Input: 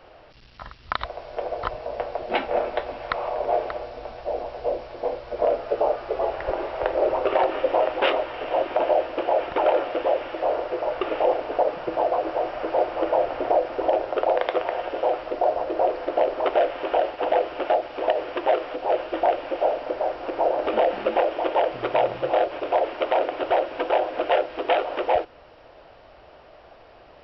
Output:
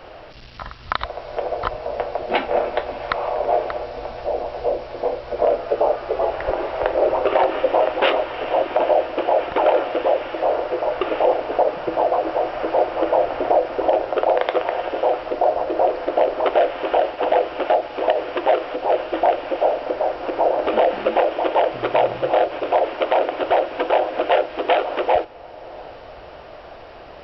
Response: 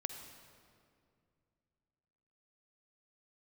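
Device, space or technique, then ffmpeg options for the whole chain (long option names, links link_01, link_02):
ducked reverb: -filter_complex "[0:a]asplit=3[link_01][link_02][link_03];[1:a]atrim=start_sample=2205[link_04];[link_02][link_04]afir=irnorm=-1:irlink=0[link_05];[link_03]apad=whole_len=1201121[link_06];[link_05][link_06]sidechaincompress=threshold=-38dB:ratio=8:attack=5.1:release=390,volume=1.5dB[link_07];[link_01][link_07]amix=inputs=2:normalize=0,volume=3dB"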